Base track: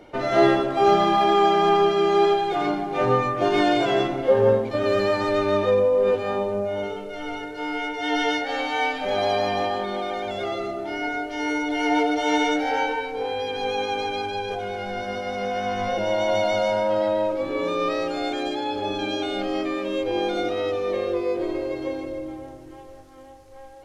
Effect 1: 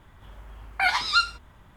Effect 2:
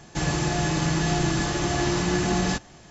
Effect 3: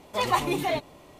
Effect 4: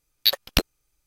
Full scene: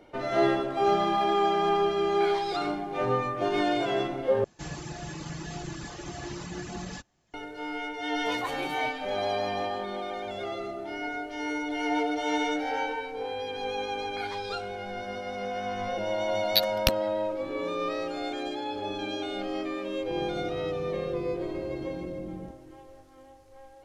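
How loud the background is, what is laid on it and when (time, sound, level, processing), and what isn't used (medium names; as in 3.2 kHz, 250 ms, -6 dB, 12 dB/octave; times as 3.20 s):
base track -6.5 dB
1.41 s: add 1 -12 dB + peak limiter -17 dBFS
4.44 s: replace with 2 -11.5 dB + reverb removal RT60 0.86 s
8.11 s: add 3 -12 dB
13.37 s: add 1 -17.5 dB
16.30 s: add 4 -12.5 dB + transient shaper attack +9 dB, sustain +1 dB
19.94 s: add 2 -16 dB + steep low-pass 530 Hz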